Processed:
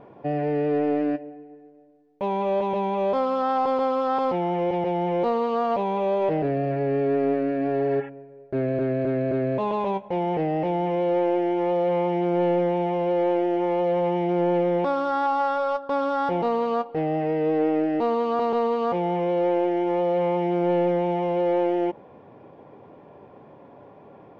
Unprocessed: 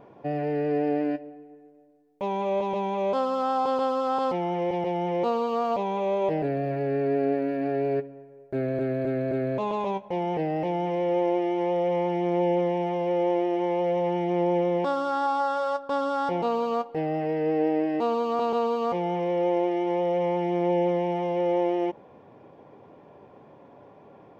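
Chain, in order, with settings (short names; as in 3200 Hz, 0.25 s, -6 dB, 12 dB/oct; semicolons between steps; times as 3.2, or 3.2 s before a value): spectral repair 7.82–8.06, 740–3500 Hz before; in parallel at -6.5 dB: hard clip -24.5 dBFS, distortion -11 dB; on the sum: air absorption 130 m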